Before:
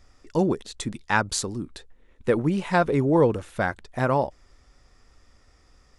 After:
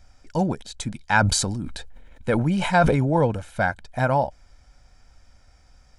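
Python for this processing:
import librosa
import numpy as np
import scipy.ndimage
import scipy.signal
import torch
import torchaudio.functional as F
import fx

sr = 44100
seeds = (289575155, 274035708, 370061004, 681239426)

y = x + 0.61 * np.pad(x, (int(1.3 * sr / 1000.0), 0))[:len(x)]
y = fx.sustainer(y, sr, db_per_s=32.0, at=(1.14, 3.22))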